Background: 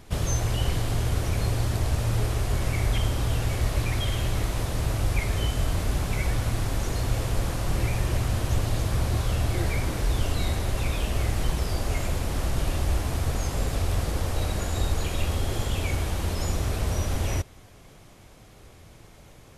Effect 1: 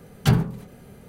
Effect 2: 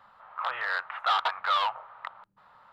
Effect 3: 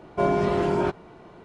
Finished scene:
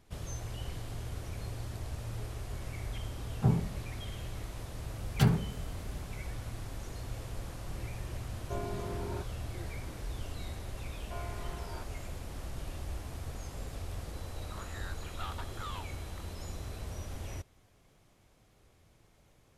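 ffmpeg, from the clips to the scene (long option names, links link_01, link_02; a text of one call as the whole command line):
ffmpeg -i bed.wav -i cue0.wav -i cue1.wav -i cue2.wav -filter_complex "[1:a]asplit=2[link_01][link_02];[3:a]asplit=2[link_03][link_04];[0:a]volume=-14.5dB[link_05];[link_01]lowpass=frequency=1100:width=0.5412,lowpass=frequency=1100:width=1.3066[link_06];[link_04]highpass=770[link_07];[2:a]aeval=exprs='val(0)+0.00631*sin(2*PI*4000*n/s)':channel_layout=same[link_08];[link_06]atrim=end=1.08,asetpts=PTS-STARTPTS,volume=-8.5dB,afade=type=in:duration=0.004:curve=hsin,afade=type=out:start_time=1.076:duration=0.004:curve=hsin,adelay=139797S[link_09];[link_02]atrim=end=1.08,asetpts=PTS-STARTPTS,volume=-7dB,afade=type=in:duration=0.004:curve=hsin,afade=type=out:start_time=1.076:duration=0.004:curve=hsin,adelay=4940[link_10];[link_03]atrim=end=1.44,asetpts=PTS-STARTPTS,volume=-17.5dB,afade=type=in:duration=0.004:curve=hsin,afade=type=out:start_time=1.436:duration=0.004:curve=hsin,adelay=8320[link_11];[link_07]atrim=end=1.44,asetpts=PTS-STARTPTS,volume=-17dB,afade=type=in:duration=0.004:curve=hsin,afade=type=out:start_time=1.436:duration=0.004:curve=hsin,adelay=10930[link_12];[link_08]atrim=end=2.72,asetpts=PTS-STARTPTS,volume=-18dB,afade=type=in:duration=0.004:curve=hsin,afade=type=out:start_time=2.716:duration=0.004:curve=hsin,adelay=14130[link_13];[link_05][link_09][link_10][link_11][link_12][link_13]amix=inputs=6:normalize=0" out.wav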